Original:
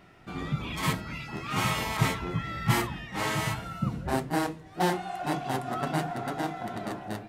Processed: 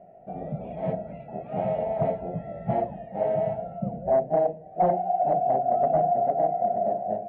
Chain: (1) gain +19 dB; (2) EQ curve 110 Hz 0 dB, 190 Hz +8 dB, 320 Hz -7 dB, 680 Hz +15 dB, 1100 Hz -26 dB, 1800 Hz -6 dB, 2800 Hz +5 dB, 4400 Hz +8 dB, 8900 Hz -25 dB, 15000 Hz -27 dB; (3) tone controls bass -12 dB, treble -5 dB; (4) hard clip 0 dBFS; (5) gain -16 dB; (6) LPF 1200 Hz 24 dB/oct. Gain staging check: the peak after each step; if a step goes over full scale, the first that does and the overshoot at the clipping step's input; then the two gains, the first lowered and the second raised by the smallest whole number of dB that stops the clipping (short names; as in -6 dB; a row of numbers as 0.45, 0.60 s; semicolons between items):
+7.5, +11.5, +8.5, 0.0, -16.0, -14.5 dBFS; step 1, 8.5 dB; step 1 +10 dB, step 5 -7 dB